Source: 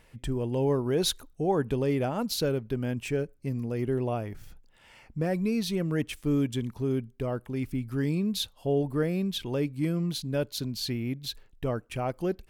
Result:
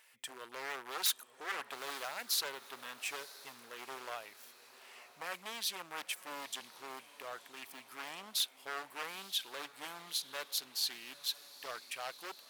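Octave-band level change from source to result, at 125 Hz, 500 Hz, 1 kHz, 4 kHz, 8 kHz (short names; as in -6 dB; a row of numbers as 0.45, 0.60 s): -39.5, -20.5, -5.5, -1.5, 0.0 dB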